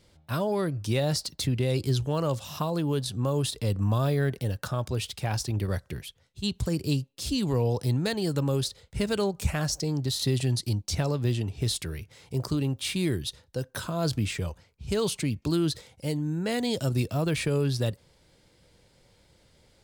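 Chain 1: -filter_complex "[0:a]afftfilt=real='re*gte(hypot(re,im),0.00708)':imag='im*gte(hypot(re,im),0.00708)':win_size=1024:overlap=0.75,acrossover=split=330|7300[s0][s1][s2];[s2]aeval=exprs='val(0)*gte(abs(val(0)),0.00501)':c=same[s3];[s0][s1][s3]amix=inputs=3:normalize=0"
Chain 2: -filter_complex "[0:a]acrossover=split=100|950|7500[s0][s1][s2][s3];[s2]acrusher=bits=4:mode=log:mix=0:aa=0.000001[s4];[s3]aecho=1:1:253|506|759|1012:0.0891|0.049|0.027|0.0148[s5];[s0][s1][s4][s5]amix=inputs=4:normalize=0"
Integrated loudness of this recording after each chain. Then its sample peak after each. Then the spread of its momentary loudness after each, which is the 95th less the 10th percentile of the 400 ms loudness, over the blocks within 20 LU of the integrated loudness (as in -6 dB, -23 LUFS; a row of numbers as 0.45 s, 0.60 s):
-29.0 LUFS, -28.5 LUFS; -13.5 dBFS, -13.5 dBFS; 7 LU, 7 LU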